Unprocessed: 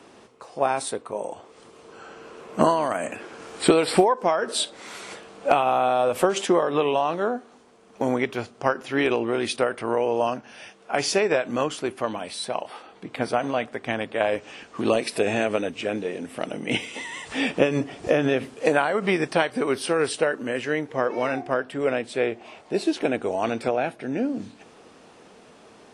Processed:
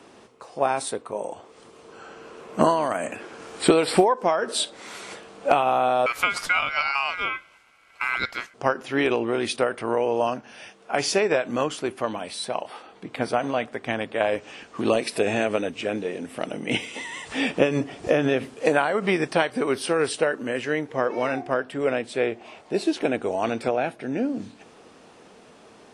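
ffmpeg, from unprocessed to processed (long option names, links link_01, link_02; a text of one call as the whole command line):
ffmpeg -i in.wav -filter_complex "[0:a]asettb=1/sr,asplit=3[link_01][link_02][link_03];[link_01]atrim=end=6.064[link_04];[link_02]atrim=start=6.06:end=8.54,asetpts=PTS-STARTPTS,afade=type=in:duration=0.004:curve=qsin,afade=type=out:start_time=2.476:duration=0.004:curve=qsin,aeval=exprs='val(0)*sin(2*PI*1800*n/s)':channel_layout=same[link_05];[link_03]atrim=start=8.536[link_06];[link_04][link_05]acrossfade=duration=0.004:curve1=hsin:curve2=qsin[link_07];[link_07][link_06]acrossfade=duration=0.004:curve1=qsin:curve2=hsin" out.wav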